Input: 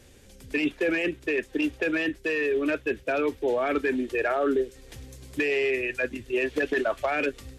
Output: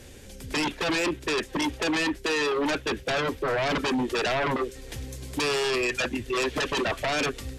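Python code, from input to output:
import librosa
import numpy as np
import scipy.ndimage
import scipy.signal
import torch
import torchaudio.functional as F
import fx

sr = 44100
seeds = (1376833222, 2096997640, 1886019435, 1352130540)

y = fx.fold_sine(x, sr, drive_db=11, ceiling_db=-14.5)
y = fx.notch(y, sr, hz=1200.0, q=25.0)
y = y * librosa.db_to_amplitude(-8.0)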